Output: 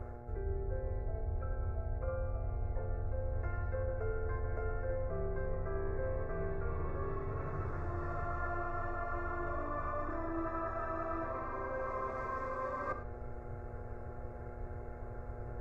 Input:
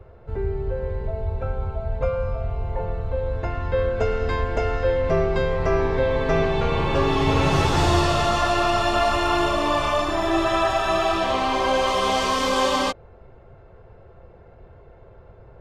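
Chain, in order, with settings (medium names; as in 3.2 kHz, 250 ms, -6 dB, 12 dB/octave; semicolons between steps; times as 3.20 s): low-pass that closes with the level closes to 1.4 kHz, closed at -19 dBFS; graphic EQ 500/4000/8000 Hz -7/-8/+4 dB; reverse; compression 12:1, threshold -37 dBFS, peak gain reduction 20.5 dB; reverse; static phaser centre 830 Hz, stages 6; gated-style reverb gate 130 ms flat, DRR 9 dB; mains buzz 120 Hz, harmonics 7, -56 dBFS -1 dB/octave; trim +4.5 dB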